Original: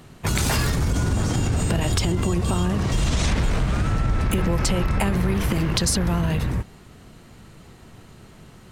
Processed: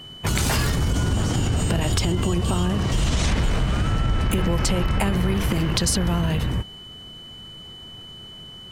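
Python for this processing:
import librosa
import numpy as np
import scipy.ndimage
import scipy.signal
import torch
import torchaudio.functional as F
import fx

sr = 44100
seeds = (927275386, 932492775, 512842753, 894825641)

y = x + 10.0 ** (-39.0 / 20.0) * np.sin(2.0 * np.pi * 3000.0 * np.arange(len(x)) / sr)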